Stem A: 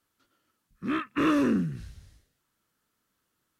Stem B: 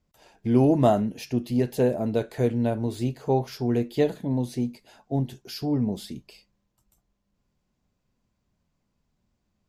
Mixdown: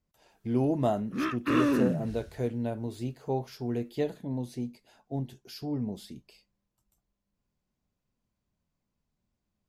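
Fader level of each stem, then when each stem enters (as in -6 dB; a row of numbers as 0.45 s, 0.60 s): -1.5 dB, -7.5 dB; 0.30 s, 0.00 s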